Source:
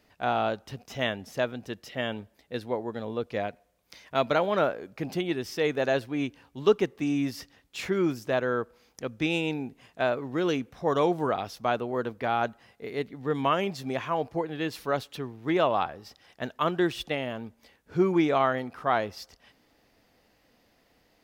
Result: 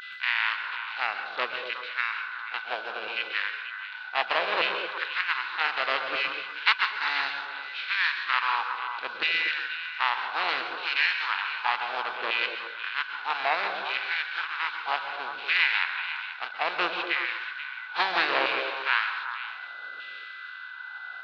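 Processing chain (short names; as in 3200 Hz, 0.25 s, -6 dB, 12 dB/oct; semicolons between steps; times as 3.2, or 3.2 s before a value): spectral contrast lowered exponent 0.32; elliptic low-pass 5400 Hz, stop band 60 dB; bell 630 Hz -12 dB 0.99 oct; LFO high-pass saw down 0.65 Hz 540–3500 Hz; whine 2000 Hz -38 dBFS; formant shift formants -5 st; delay with a stepping band-pass 0.121 s, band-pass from 160 Hz, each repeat 1.4 oct, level -1 dB; plate-style reverb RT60 0.59 s, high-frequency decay 0.75×, pre-delay 0.115 s, DRR 7.5 dB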